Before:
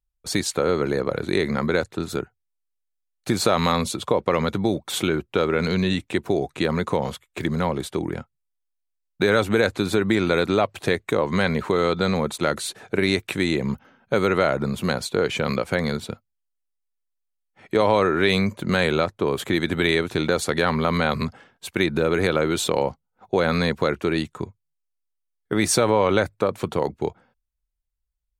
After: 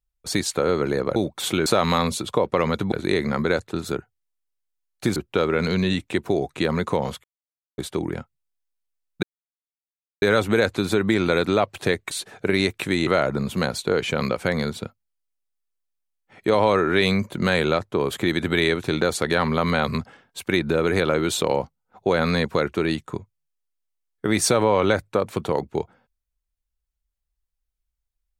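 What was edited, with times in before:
1.16–3.4 swap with 4.66–5.16
7.24–7.78 mute
9.23 insert silence 0.99 s
11.12–12.6 cut
13.56–14.34 cut

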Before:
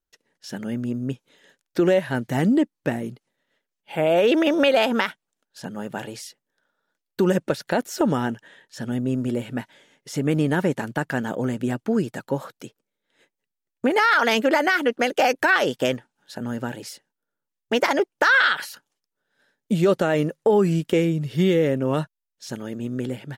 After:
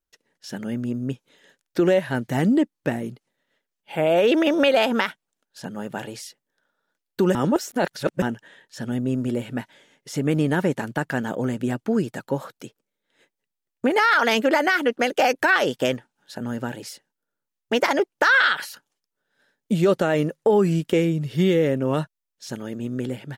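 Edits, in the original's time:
7.35–8.22 reverse

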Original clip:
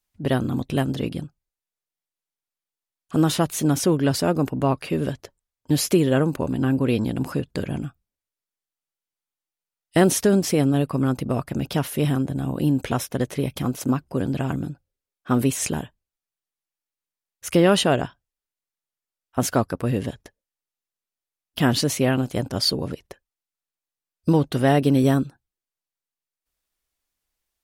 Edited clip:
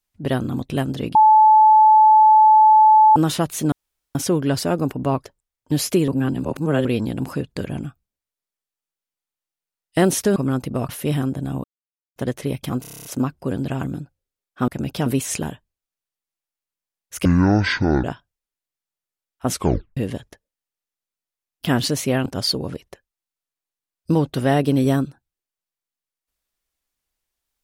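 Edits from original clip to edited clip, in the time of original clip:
1.15–3.16 bleep 866 Hz -8 dBFS
3.72 insert room tone 0.43 s
4.82–5.24 cut
6.07–6.84 reverse
10.35–10.91 cut
11.44–11.82 move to 15.37
12.57–13.09 mute
13.74 stutter 0.03 s, 9 plays
17.56–17.97 speed 52%
19.43 tape stop 0.47 s
22.19–22.44 cut

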